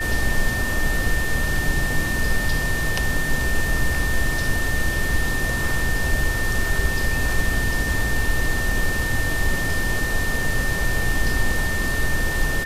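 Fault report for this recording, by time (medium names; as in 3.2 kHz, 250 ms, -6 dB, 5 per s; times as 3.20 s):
whine 1.8 kHz -25 dBFS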